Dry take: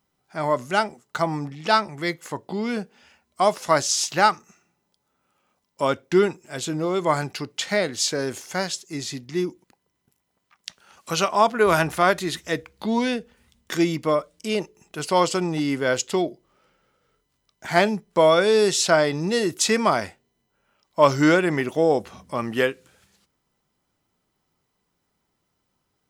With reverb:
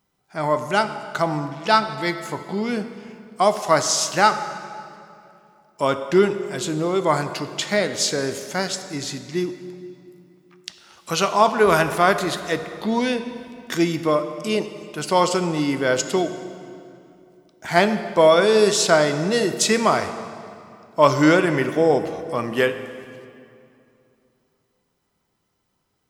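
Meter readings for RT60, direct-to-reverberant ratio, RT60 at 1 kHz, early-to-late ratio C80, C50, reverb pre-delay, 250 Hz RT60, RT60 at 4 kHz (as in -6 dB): 2.6 s, 9.0 dB, 2.6 s, 11.0 dB, 10.0 dB, 3 ms, 3.0 s, 1.9 s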